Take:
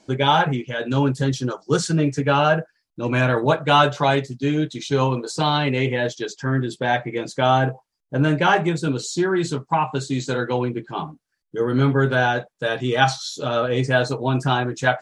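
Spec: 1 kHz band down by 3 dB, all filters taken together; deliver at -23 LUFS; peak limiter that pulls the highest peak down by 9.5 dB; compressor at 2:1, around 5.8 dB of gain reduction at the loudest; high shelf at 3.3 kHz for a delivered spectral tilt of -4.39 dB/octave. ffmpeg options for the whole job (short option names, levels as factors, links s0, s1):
-af "equalizer=f=1000:t=o:g=-5,highshelf=f=3300:g=8,acompressor=threshold=0.0708:ratio=2,volume=1.78,alimiter=limit=0.224:level=0:latency=1"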